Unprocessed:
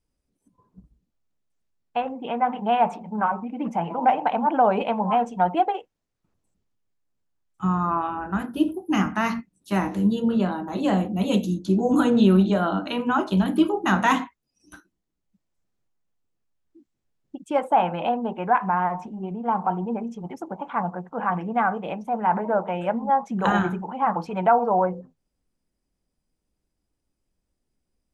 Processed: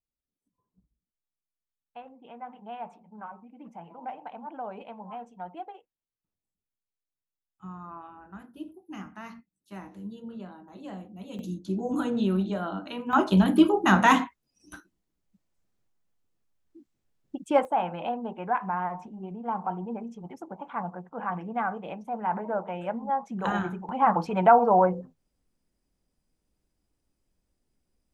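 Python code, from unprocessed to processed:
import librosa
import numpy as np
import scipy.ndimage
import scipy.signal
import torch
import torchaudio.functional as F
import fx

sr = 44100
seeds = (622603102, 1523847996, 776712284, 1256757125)

y = fx.gain(x, sr, db=fx.steps((0.0, -18.5), (11.39, -9.0), (13.13, 1.0), (17.65, -7.0), (23.89, 1.0)))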